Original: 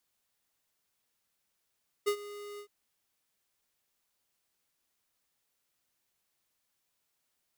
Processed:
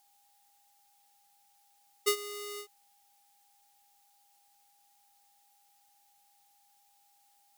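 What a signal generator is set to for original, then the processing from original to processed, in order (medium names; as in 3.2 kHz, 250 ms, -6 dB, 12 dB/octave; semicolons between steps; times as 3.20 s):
ADSR square 411 Hz, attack 20 ms, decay 78 ms, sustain -17.5 dB, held 0.53 s, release 84 ms -26.5 dBFS
whistle 810 Hz -71 dBFS; treble shelf 2.1 kHz +12 dB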